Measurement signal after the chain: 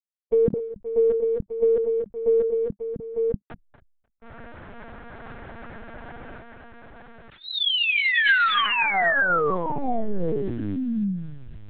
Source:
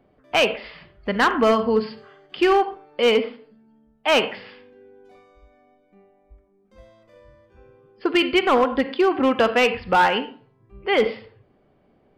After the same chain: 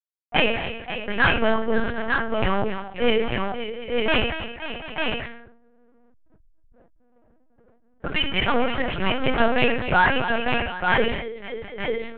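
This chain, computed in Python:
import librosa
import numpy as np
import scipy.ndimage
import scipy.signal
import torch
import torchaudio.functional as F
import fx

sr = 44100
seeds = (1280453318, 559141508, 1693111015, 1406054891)

p1 = fx.delta_hold(x, sr, step_db=-42.0)
p2 = fx.env_lowpass(p1, sr, base_hz=710.0, full_db=-14.5)
p3 = fx.low_shelf(p2, sr, hz=320.0, db=-11.0)
p4 = p3 + 0.46 * np.pad(p3, (int(4.3 * sr / 1000.0), 0))[:len(p3)]
p5 = fx.rider(p4, sr, range_db=3, speed_s=2.0)
p6 = p4 + (p5 * 10.0 ** (2.0 / 20.0))
p7 = fx.graphic_eq_31(p6, sr, hz=(200, 1000, 1600), db=(7, -5, 6))
p8 = p7 + fx.echo_multitap(p7, sr, ms=(236, 268, 533, 740, 899), db=(-15.5, -13.0, -11.0, -16.0, -4.0), dry=0)
p9 = fx.lpc_vocoder(p8, sr, seeds[0], excitation='pitch_kept', order=8)
p10 = fx.sustainer(p9, sr, db_per_s=64.0)
y = p10 * 10.0 ** (-8.5 / 20.0)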